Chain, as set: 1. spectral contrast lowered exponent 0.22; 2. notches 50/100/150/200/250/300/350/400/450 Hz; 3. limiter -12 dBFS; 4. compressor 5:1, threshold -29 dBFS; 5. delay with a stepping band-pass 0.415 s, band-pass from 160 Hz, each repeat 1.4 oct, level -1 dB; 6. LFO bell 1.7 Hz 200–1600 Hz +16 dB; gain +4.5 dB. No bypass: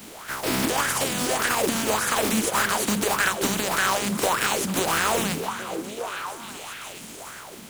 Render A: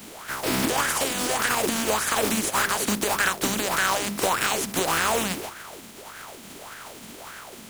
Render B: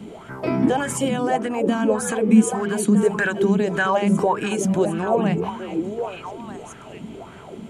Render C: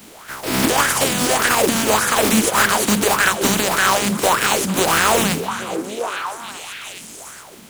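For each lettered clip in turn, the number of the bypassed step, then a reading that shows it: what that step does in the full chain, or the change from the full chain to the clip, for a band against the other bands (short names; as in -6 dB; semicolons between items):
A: 5, momentary loudness spread change +4 LU; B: 1, 4 kHz band -12.5 dB; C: 4, mean gain reduction 4.0 dB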